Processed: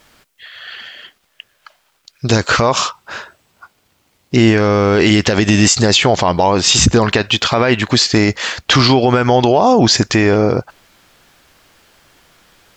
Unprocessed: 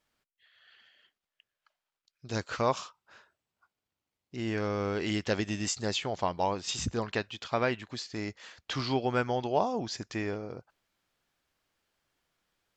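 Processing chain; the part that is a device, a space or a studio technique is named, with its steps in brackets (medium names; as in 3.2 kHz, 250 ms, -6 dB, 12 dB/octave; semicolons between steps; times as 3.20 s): loud club master (compression 3:1, threshold -31 dBFS, peak gain reduction 8 dB; hard clipper -18 dBFS, distortion -48 dB; loudness maximiser +29.5 dB); trim -1 dB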